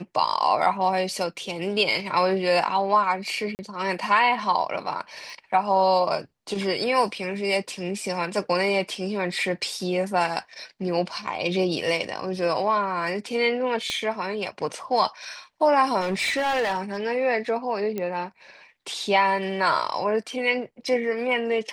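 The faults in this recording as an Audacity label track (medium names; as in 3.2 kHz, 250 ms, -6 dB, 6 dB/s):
3.550000	3.590000	dropout 39 ms
5.300000	5.300000	pop
13.900000	13.900000	pop -15 dBFS
16.000000	17.060000	clipped -20.5 dBFS
17.980000	17.980000	pop -16 dBFS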